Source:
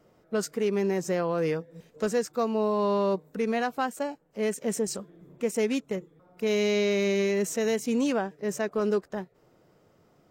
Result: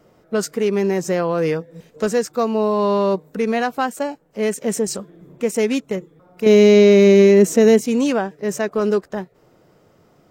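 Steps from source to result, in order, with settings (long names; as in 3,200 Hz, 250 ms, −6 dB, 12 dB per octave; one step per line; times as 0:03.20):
0:06.46–0:07.81: parametric band 280 Hz +10 dB 2 octaves
level +7.5 dB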